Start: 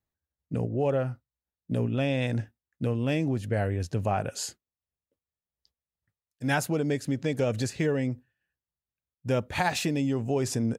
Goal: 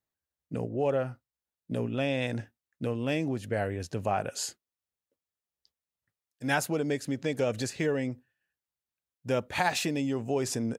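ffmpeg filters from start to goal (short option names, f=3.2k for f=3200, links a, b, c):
-af "lowshelf=f=150:g=-11"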